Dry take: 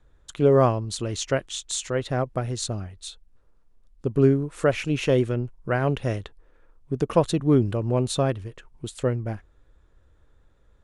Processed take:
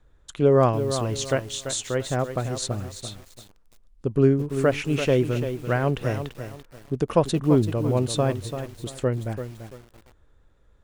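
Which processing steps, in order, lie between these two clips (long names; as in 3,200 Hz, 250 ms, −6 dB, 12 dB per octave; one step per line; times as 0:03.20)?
feedback echo at a low word length 339 ms, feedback 35%, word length 7 bits, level −9 dB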